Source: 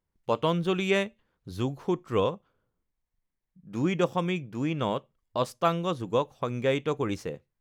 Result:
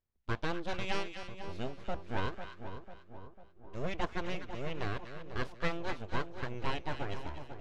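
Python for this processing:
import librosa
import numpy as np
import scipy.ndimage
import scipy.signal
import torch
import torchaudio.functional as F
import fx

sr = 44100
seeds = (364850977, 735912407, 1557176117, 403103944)

p1 = np.abs(x)
p2 = scipy.signal.sosfilt(scipy.signal.butter(2, 5500.0, 'lowpass', fs=sr, output='sos'), p1)
p3 = fx.peak_eq(p2, sr, hz=66.0, db=11.5, octaves=0.88)
p4 = p3 + fx.echo_split(p3, sr, split_hz=1100.0, low_ms=497, high_ms=245, feedback_pct=52, wet_db=-9, dry=0)
y = p4 * librosa.db_to_amplitude(-7.0)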